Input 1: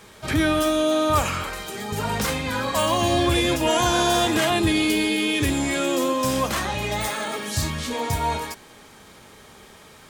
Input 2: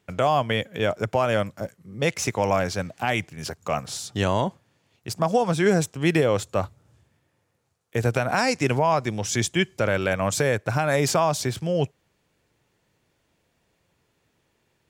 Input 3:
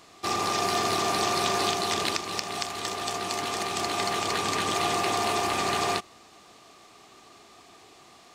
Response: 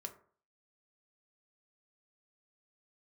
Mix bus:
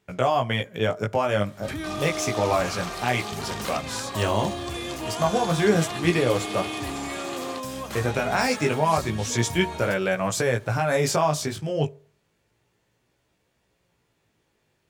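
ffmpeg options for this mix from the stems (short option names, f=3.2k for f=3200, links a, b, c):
-filter_complex "[0:a]acompressor=threshold=-23dB:ratio=3,adelay=1400,volume=-9.5dB,asplit=2[a][b];[b]volume=-6dB[c];[1:a]flanger=delay=16:depth=4:speed=0.3,volume=0dB,asplit=2[d][e];[e]volume=-7.5dB[f];[2:a]adelay=1600,volume=-9.5dB[g];[3:a]atrim=start_sample=2205[h];[c][f]amix=inputs=2:normalize=0[i];[i][h]afir=irnorm=-1:irlink=0[j];[a][d][g][j]amix=inputs=4:normalize=0"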